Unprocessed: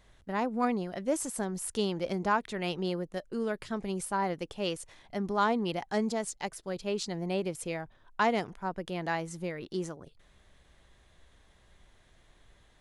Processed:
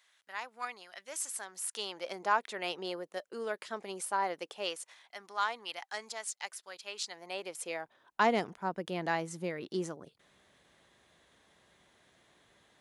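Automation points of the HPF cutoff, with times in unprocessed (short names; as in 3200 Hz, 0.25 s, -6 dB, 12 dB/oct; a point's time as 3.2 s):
1.22 s 1500 Hz
2.42 s 500 Hz
4.53 s 500 Hz
5.15 s 1200 Hz
7.01 s 1200 Hz
7.82 s 450 Hz
8.29 s 170 Hz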